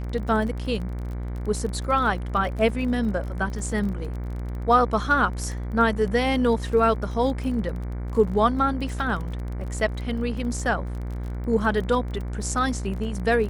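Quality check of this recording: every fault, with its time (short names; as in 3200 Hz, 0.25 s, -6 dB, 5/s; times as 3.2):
buzz 60 Hz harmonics 39 -30 dBFS
crackle 27/s -32 dBFS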